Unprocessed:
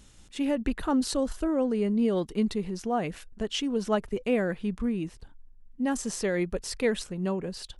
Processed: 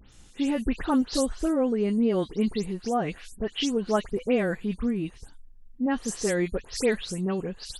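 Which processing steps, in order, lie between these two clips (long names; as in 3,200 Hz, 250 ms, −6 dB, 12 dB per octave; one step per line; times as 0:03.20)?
every frequency bin delayed by itself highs late, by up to 120 ms
level +2 dB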